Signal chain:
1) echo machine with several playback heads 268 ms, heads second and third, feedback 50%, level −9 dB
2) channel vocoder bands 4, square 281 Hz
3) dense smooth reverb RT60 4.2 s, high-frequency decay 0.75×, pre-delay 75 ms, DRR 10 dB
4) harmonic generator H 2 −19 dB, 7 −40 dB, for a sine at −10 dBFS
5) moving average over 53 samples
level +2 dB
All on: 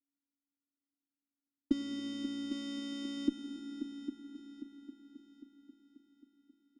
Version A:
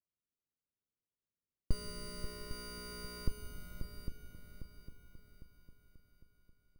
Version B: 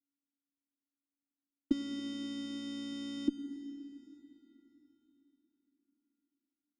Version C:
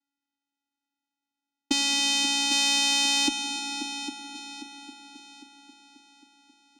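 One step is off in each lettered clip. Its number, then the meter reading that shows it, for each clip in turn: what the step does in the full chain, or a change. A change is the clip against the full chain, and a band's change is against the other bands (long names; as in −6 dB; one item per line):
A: 2, 250 Hz band −16.5 dB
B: 1, change in momentary loudness spread −5 LU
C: 5, 250 Hz band −24.5 dB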